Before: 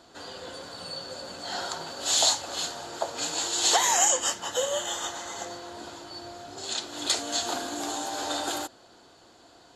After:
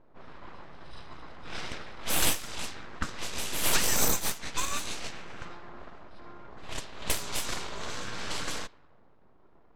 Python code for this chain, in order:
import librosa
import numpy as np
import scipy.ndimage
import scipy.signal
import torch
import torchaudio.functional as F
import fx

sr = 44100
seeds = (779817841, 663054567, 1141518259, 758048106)

y = np.abs(x)
y = fx.env_lowpass(y, sr, base_hz=780.0, full_db=-24.5)